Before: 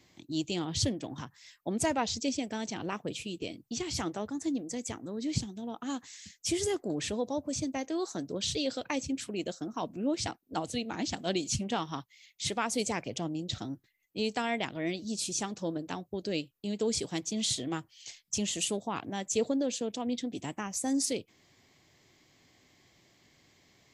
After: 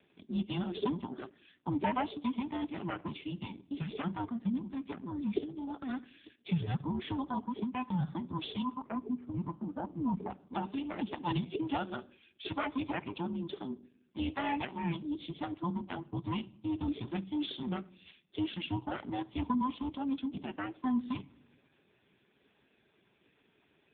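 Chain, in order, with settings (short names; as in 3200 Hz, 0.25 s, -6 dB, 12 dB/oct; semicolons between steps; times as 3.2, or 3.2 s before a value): band inversion scrambler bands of 500 Hz; 8.62–10.3 Bessel low-pass 940 Hz, order 4; shoebox room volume 2100 m³, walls furnished, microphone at 0.42 m; AMR-NB 5.15 kbps 8000 Hz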